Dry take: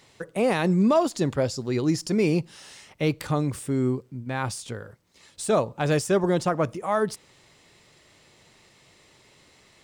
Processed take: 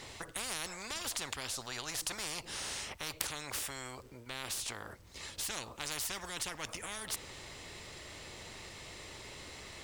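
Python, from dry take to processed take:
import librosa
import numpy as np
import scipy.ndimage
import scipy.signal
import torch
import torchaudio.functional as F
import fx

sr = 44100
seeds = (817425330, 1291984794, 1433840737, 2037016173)

y = fx.low_shelf_res(x, sr, hz=110.0, db=11.0, q=1.5)
y = fx.spectral_comp(y, sr, ratio=10.0)
y = y * librosa.db_to_amplitude(2.0)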